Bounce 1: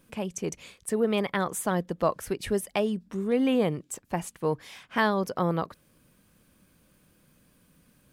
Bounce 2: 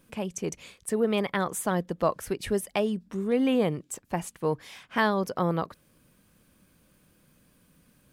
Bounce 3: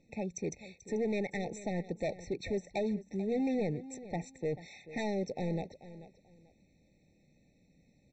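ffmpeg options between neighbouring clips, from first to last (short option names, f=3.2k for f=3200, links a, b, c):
-af anull
-af "aresample=16000,asoftclip=type=hard:threshold=-24.5dB,aresample=44100,aecho=1:1:438|876:0.168|0.0403,afftfilt=real='re*eq(mod(floor(b*sr/1024/890),2),0)':imag='im*eq(mod(floor(b*sr/1024/890),2),0)':win_size=1024:overlap=0.75,volume=-4dB"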